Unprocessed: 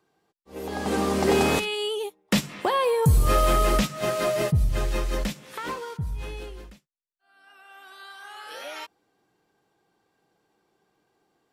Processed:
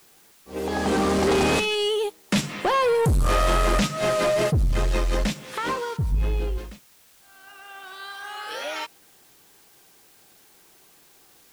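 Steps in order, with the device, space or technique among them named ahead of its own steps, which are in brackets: 6.12–6.58 s: tilt EQ -2 dB/octave; compact cassette (saturation -23.5 dBFS, distortion -9 dB; low-pass 10 kHz 12 dB/octave; wow and flutter 21 cents; white noise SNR 31 dB); trim +6.5 dB

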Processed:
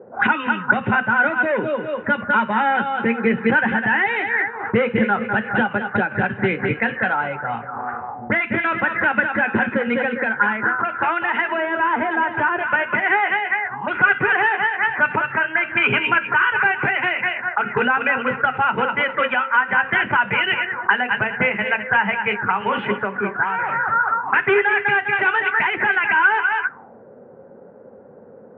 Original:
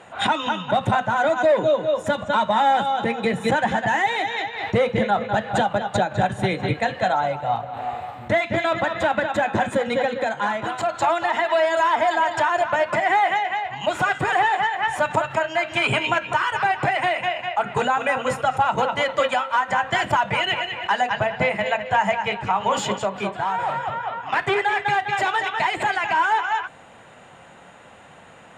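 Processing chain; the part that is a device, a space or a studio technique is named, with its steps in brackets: envelope filter bass rig (touch-sensitive low-pass 490–2800 Hz up, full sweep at -19.5 dBFS; cabinet simulation 84–2300 Hz, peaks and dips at 230 Hz +9 dB, 410 Hz +8 dB, 660 Hz -9 dB, 1.5 kHz +9 dB); 11.48–12.59 s: tilt shelf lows +7 dB, about 940 Hz; trim -1.5 dB

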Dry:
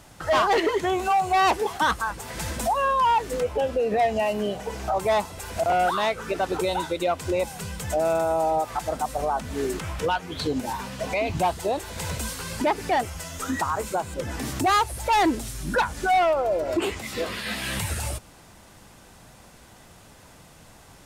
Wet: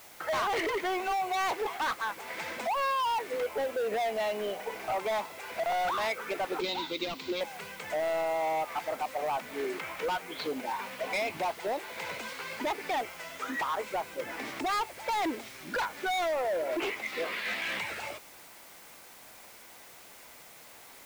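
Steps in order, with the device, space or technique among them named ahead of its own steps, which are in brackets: drive-through speaker (band-pass 390–3600 Hz; peaking EQ 2.2 kHz +9 dB 0.26 oct; hard clipper -24.5 dBFS, distortion -7 dB; white noise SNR 20 dB); 6.60–7.41 s: fifteen-band graphic EQ 250 Hz +11 dB, 630 Hz -11 dB, 1.6 kHz -7 dB, 4 kHz +11 dB, 10 kHz -10 dB; trim -3 dB

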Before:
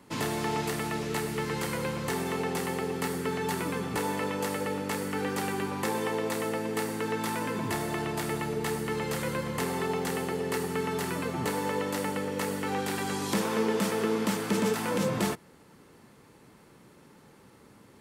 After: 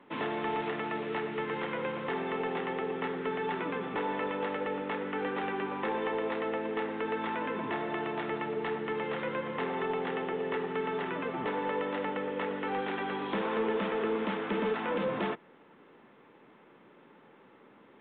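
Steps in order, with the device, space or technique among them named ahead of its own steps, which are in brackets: telephone (band-pass 260–3200 Hz; saturation -22 dBFS, distortion -22 dB; µ-law 64 kbps 8 kHz)

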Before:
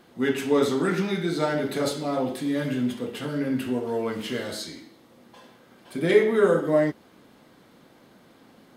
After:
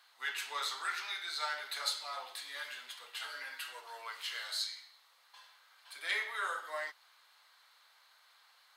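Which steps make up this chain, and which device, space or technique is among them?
headphones lying on a table (high-pass 1 kHz 24 dB/octave; peaking EQ 4.2 kHz +8 dB 0.3 oct); 3.19–3.81 s: comb 6.3 ms, depth 82%; trim -5 dB

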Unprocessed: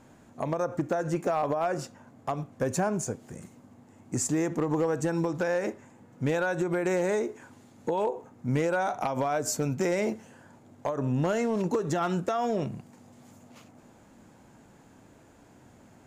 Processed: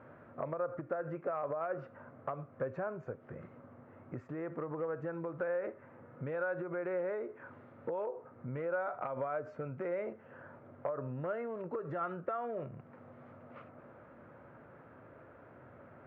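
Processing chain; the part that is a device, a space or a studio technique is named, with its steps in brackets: bass amplifier (compression 3:1, threshold -41 dBFS, peak gain reduction 13.5 dB; cabinet simulation 89–2100 Hz, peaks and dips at 200 Hz -9 dB, 290 Hz -5 dB, 560 Hz +7 dB, 820 Hz -5 dB, 1.3 kHz +8 dB); trim +1 dB

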